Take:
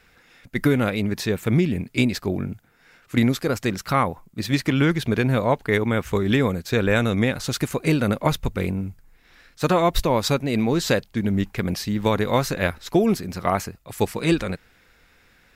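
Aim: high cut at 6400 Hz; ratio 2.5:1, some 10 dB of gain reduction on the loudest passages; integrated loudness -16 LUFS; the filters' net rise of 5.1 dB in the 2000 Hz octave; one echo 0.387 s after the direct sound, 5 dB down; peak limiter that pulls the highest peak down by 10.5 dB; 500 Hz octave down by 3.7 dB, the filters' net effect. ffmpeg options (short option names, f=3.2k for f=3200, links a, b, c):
-af "lowpass=6.4k,equalizer=f=500:t=o:g=-5,equalizer=f=2k:t=o:g=6.5,acompressor=threshold=-30dB:ratio=2.5,alimiter=limit=-22dB:level=0:latency=1,aecho=1:1:387:0.562,volume=16.5dB"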